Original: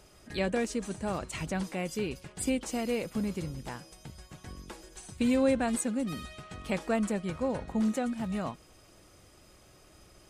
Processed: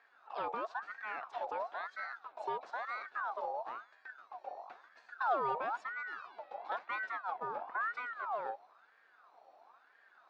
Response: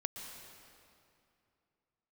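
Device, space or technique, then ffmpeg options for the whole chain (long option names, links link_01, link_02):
voice changer toy: -filter_complex "[0:a]asplit=3[link_01][link_02][link_03];[link_01]afade=type=out:start_time=6.69:duration=0.02[link_04];[link_02]agate=range=-33dB:threshold=-34dB:ratio=3:detection=peak,afade=type=in:start_time=6.69:duration=0.02,afade=type=out:start_time=7.54:duration=0.02[link_05];[link_03]afade=type=in:start_time=7.54:duration=0.02[link_06];[link_04][link_05][link_06]amix=inputs=3:normalize=0,equalizer=frequency=120:width=2.2:gain=12.5,aeval=exprs='val(0)*sin(2*PI*1200*n/s+1200*0.45/1*sin(2*PI*1*n/s))':channel_layout=same,highpass=420,equalizer=frequency=720:width_type=q:width=4:gain=8,equalizer=frequency=2000:width_type=q:width=4:gain=-7,equalizer=frequency=3100:width_type=q:width=4:gain=-9,lowpass=frequency=3600:width=0.5412,lowpass=frequency=3600:width=1.3066,volume=-6dB"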